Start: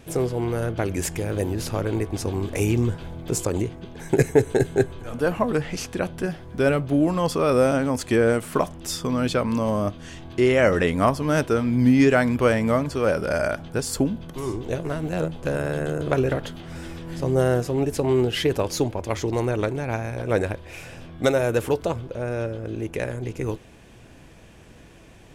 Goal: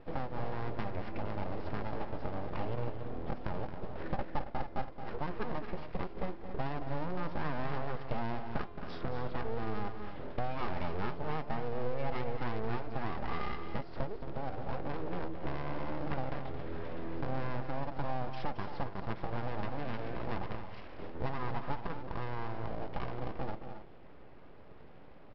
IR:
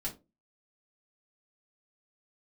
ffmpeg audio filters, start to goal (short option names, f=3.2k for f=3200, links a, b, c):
-filter_complex "[0:a]equalizer=f=810:t=o:w=1.9:g=-6,aecho=1:1:4.9:0.51,aeval=exprs='0.668*(cos(1*acos(clip(val(0)/0.668,-1,1)))-cos(1*PI/2))+0.0531*(cos(3*acos(clip(val(0)/0.668,-1,1)))-cos(3*PI/2))+0.0299*(cos(8*acos(clip(val(0)/0.668,-1,1)))-cos(8*PI/2))':c=same,lowpass=1.1k,agate=range=-7dB:threshold=-42dB:ratio=16:detection=peak,highpass=f=140:p=1,aresample=11025,aeval=exprs='abs(val(0))':c=same,aresample=44100,bandreject=f=344.4:t=h:w=4,bandreject=f=688.8:t=h:w=4,bandreject=f=1.0332k:t=h:w=4,bandreject=f=1.3776k:t=h:w=4,bandreject=f=1.722k:t=h:w=4,bandreject=f=2.0664k:t=h:w=4,bandreject=f=2.4108k:t=h:w=4,bandreject=f=2.7552k:t=h:w=4,bandreject=f=3.0996k:t=h:w=4,bandreject=f=3.444k:t=h:w=4,bandreject=f=3.7884k:t=h:w=4,bandreject=f=4.1328k:t=h:w=4,bandreject=f=4.4772k:t=h:w=4,bandreject=f=4.8216k:t=h:w=4,bandreject=f=5.166k:t=h:w=4,bandreject=f=5.5104k:t=h:w=4,bandreject=f=5.8548k:t=h:w=4,bandreject=f=6.1992k:t=h:w=4,bandreject=f=6.5436k:t=h:w=4,bandreject=f=6.888k:t=h:w=4,bandreject=f=7.2324k:t=h:w=4,bandreject=f=7.5768k:t=h:w=4,bandreject=f=7.9212k:t=h:w=4,bandreject=f=8.2656k:t=h:w=4,bandreject=f=8.61k:t=h:w=4,bandreject=f=8.9544k:t=h:w=4,bandreject=f=9.2988k:t=h:w=4,acompressor=threshold=-44dB:ratio=4,asplit=2[a][b];[b]aecho=0:1:221.6|274.1:0.316|0.282[c];[a][c]amix=inputs=2:normalize=0,volume=9.5dB"